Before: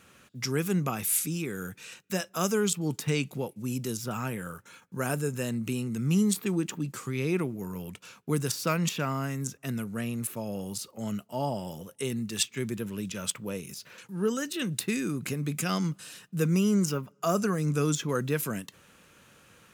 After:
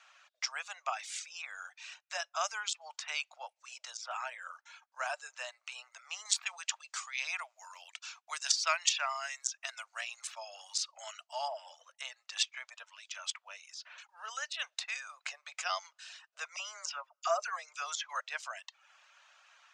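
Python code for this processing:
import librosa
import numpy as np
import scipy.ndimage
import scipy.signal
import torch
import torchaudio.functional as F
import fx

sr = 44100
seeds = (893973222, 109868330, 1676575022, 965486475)

y = fx.tilt_eq(x, sr, slope=3.5, at=(6.25, 11.48))
y = fx.peak_eq(y, sr, hz=260.0, db=-12.5, octaves=2.5, at=(12.82, 13.61))
y = fx.dispersion(y, sr, late='lows', ms=44.0, hz=1200.0, at=(16.56, 18.2))
y = scipy.signal.sosfilt(scipy.signal.cheby2(4, 40, 11000.0, 'lowpass', fs=sr, output='sos'), y)
y = fx.dereverb_blind(y, sr, rt60_s=0.58)
y = scipy.signal.sosfilt(scipy.signal.butter(12, 630.0, 'highpass', fs=sr, output='sos'), y)
y = y * 10.0 ** (-1.0 / 20.0)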